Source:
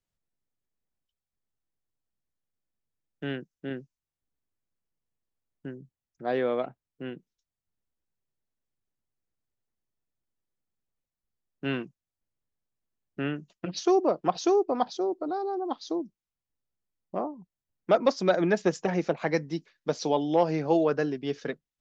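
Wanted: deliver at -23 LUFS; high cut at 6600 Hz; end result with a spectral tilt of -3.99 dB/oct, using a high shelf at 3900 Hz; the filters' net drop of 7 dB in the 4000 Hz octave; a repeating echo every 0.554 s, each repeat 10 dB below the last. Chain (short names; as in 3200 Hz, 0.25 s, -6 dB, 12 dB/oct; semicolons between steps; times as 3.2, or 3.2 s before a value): LPF 6600 Hz; high shelf 3900 Hz -5.5 dB; bell 4000 Hz -5 dB; feedback echo 0.554 s, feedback 32%, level -10 dB; gain +5.5 dB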